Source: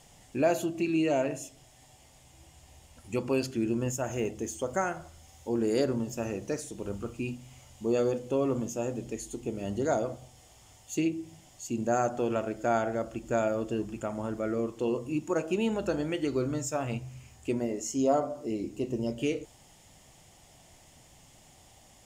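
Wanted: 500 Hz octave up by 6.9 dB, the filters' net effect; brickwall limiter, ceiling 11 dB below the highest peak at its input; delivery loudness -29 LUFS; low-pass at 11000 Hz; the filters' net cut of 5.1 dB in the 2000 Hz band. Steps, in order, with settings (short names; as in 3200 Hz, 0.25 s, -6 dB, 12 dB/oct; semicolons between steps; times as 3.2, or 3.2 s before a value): LPF 11000 Hz; bell 500 Hz +9 dB; bell 2000 Hz -8.5 dB; gain +1.5 dB; limiter -19 dBFS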